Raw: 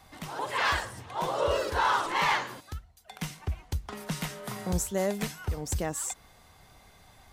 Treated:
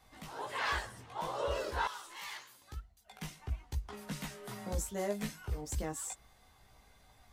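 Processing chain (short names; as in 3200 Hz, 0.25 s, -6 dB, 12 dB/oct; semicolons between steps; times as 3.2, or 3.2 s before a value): chorus voices 6, 0.44 Hz, delay 17 ms, depth 2.6 ms; 1.87–2.62 pre-emphasis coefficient 0.9; gain -4.5 dB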